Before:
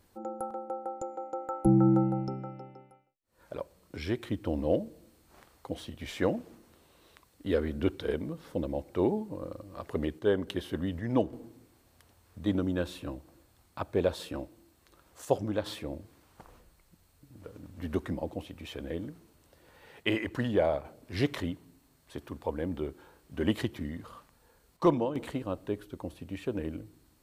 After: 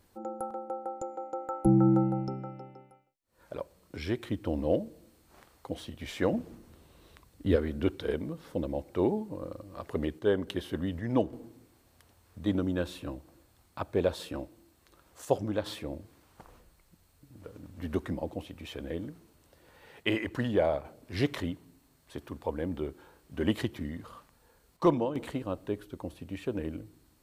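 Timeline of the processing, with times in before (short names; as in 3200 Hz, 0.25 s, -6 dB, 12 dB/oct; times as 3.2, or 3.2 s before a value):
6.33–7.56 low shelf 230 Hz +10.5 dB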